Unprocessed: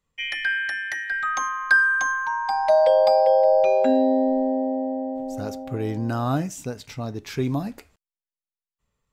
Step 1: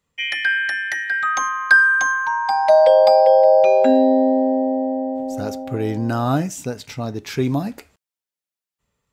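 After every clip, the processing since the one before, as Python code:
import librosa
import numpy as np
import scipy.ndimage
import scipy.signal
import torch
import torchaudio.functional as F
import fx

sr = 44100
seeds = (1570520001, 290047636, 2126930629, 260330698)

y = fx.highpass(x, sr, hz=84.0, slope=6)
y = fx.notch(y, sr, hz=1100.0, q=19.0)
y = y * 10.0 ** (5.0 / 20.0)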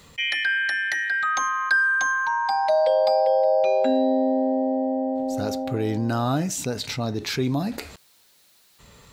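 y = fx.peak_eq(x, sr, hz=4100.0, db=7.5, octaves=0.35)
y = fx.env_flatten(y, sr, amount_pct=50)
y = y * 10.0 ** (-9.0 / 20.0)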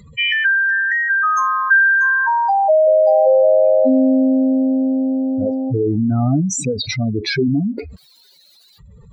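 y = fx.spec_expand(x, sr, power=3.4)
y = y * 10.0 ** (8.0 / 20.0)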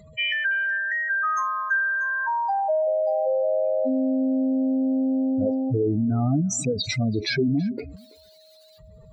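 y = fx.rider(x, sr, range_db=4, speed_s=0.5)
y = y + 10.0 ** (-44.0 / 20.0) * np.sin(2.0 * np.pi * 630.0 * np.arange(len(y)) / sr)
y = y + 10.0 ** (-23.0 / 20.0) * np.pad(y, (int(331 * sr / 1000.0), 0))[:len(y)]
y = y * 10.0 ** (-8.0 / 20.0)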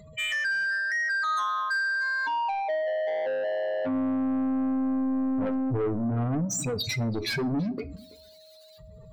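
y = 10.0 ** (-25.0 / 20.0) * np.tanh(x / 10.0 ** (-25.0 / 20.0))
y = fx.room_shoebox(y, sr, seeds[0], volume_m3=410.0, walls='furnished', distance_m=0.35)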